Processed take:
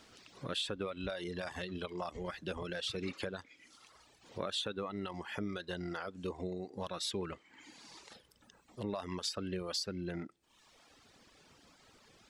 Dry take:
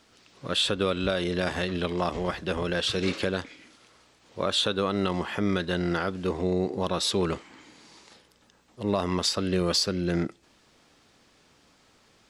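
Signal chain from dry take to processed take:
downward compressor 2 to 1, threshold −45 dBFS, peak gain reduction 13.5 dB
reverb reduction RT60 1.4 s
level +1 dB

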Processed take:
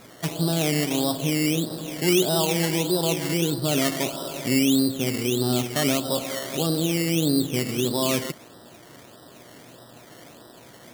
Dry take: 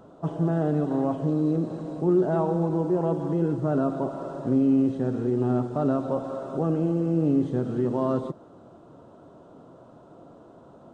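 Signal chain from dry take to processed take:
sample-and-hold swept by an LFO 14×, swing 60% 1.6 Hz
high-shelf EQ 2,300 Hz +10 dB
hum with harmonics 120 Hz, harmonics 16, −55 dBFS −2 dB per octave

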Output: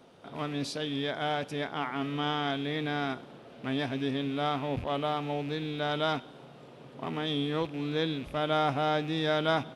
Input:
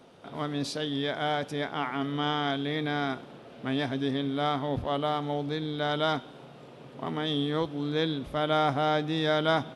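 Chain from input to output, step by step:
loose part that buzzes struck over −39 dBFS, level −35 dBFS
level −2 dB

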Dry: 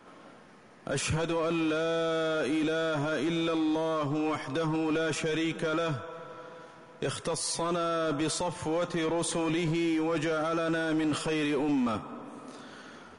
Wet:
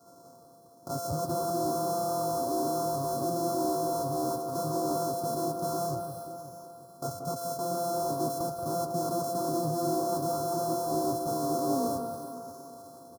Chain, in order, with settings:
samples sorted by size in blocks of 64 samples
high-pass filter 130 Hz 6 dB per octave
delay that swaps between a low-pass and a high-pass 180 ms, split 1,800 Hz, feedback 63%, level −6.5 dB
pitch-shifted copies added −5 semitones −13 dB
elliptic band-stop filter 1,200–4,900 Hz, stop band 70 dB
notch comb filter 210 Hz

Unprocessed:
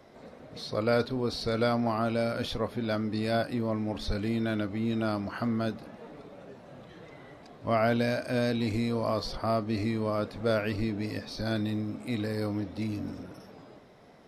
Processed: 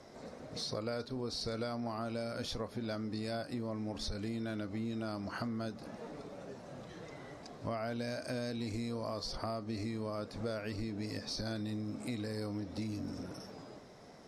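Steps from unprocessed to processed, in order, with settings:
low-pass filter 9,400 Hz 12 dB per octave
high shelf with overshoot 4,300 Hz +6.5 dB, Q 1.5
downward compressor 6 to 1, threshold −36 dBFS, peak gain reduction 13.5 dB

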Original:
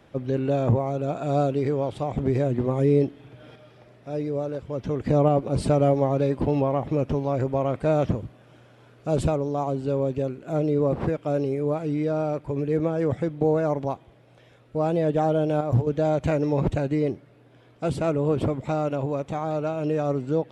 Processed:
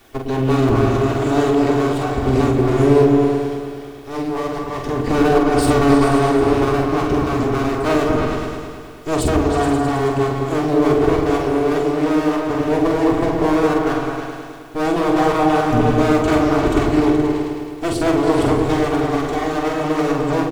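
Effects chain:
lower of the sound and its delayed copy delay 2.7 ms
bit-depth reduction 12 bits, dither triangular
high-shelf EQ 3,600 Hz +7.5 dB
mains-hum notches 50/100/150 Hz
double-tracking delay 46 ms −5 dB
echo whose low-pass opens from repeat to repeat 106 ms, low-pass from 400 Hz, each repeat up 2 octaves, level 0 dB
level +5.5 dB

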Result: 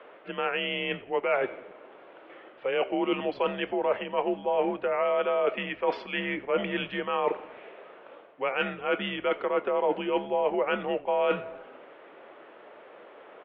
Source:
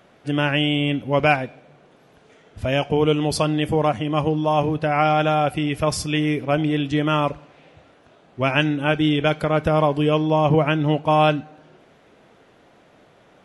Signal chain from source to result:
single-sideband voice off tune −110 Hz 530–3,400 Hz
reversed playback
downward compressor 5 to 1, threshold −32 dBFS, peak gain reduction 16.5 dB
reversed playback
high-shelf EQ 2,600 Hz −10 dB
echo with shifted repeats 86 ms, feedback 49%, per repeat −70 Hz, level −22 dB
level +8 dB

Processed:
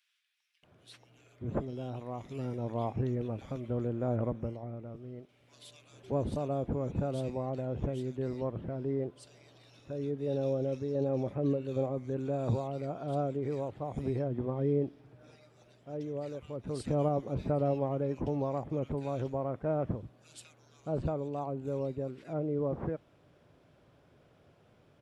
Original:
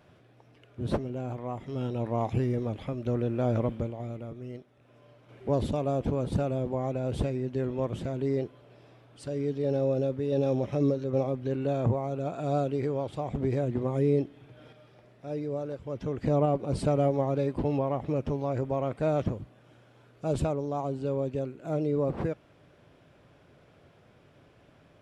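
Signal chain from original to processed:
multiband delay without the direct sound highs, lows 630 ms, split 2,100 Hz
level −4.5 dB

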